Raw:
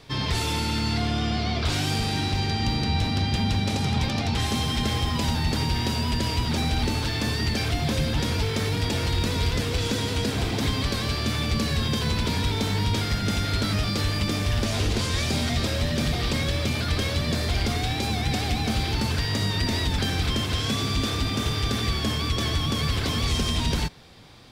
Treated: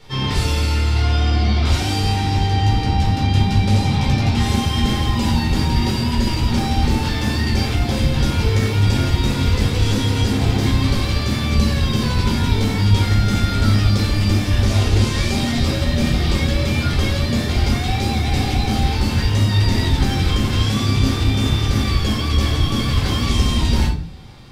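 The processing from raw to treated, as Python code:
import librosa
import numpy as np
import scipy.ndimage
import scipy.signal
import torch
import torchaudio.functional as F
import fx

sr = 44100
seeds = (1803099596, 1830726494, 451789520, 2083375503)

y = fx.room_shoebox(x, sr, seeds[0], volume_m3=370.0, walls='furnished', distance_m=4.4)
y = F.gain(torch.from_numpy(y), -3.0).numpy()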